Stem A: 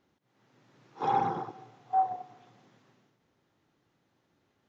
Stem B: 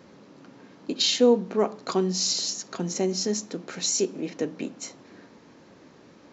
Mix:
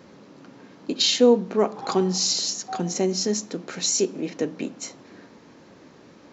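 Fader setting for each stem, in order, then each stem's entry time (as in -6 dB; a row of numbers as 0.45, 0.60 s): -8.0, +2.5 dB; 0.75, 0.00 s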